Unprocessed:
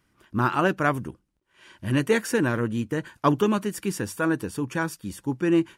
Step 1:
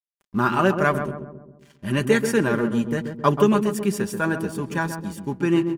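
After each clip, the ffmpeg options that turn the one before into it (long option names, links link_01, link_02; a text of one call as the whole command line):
ffmpeg -i in.wav -filter_complex "[0:a]aeval=exprs='sgn(val(0))*max(abs(val(0))-0.00376,0)':channel_layout=same,aecho=1:1:5:0.53,asplit=2[link_01][link_02];[link_02]adelay=134,lowpass=frequency=930:poles=1,volume=-6dB,asplit=2[link_03][link_04];[link_04]adelay=134,lowpass=frequency=930:poles=1,volume=0.55,asplit=2[link_05][link_06];[link_06]adelay=134,lowpass=frequency=930:poles=1,volume=0.55,asplit=2[link_07][link_08];[link_08]adelay=134,lowpass=frequency=930:poles=1,volume=0.55,asplit=2[link_09][link_10];[link_10]adelay=134,lowpass=frequency=930:poles=1,volume=0.55,asplit=2[link_11][link_12];[link_12]adelay=134,lowpass=frequency=930:poles=1,volume=0.55,asplit=2[link_13][link_14];[link_14]adelay=134,lowpass=frequency=930:poles=1,volume=0.55[link_15];[link_03][link_05][link_07][link_09][link_11][link_13][link_15]amix=inputs=7:normalize=0[link_16];[link_01][link_16]amix=inputs=2:normalize=0,volume=1.5dB" out.wav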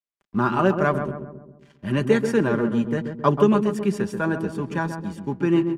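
ffmpeg -i in.wav -filter_complex "[0:a]aemphasis=mode=reproduction:type=50fm,acrossover=split=150|1600|2500[link_01][link_02][link_03][link_04];[link_03]acompressor=threshold=-43dB:ratio=6[link_05];[link_01][link_02][link_05][link_04]amix=inputs=4:normalize=0" out.wav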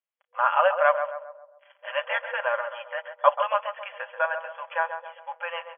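ffmpeg -i in.wav -af "afftfilt=real='re*between(b*sr/4096,490,3400)':imag='im*between(b*sr/4096,490,3400)':win_size=4096:overlap=0.75,volume=2.5dB" out.wav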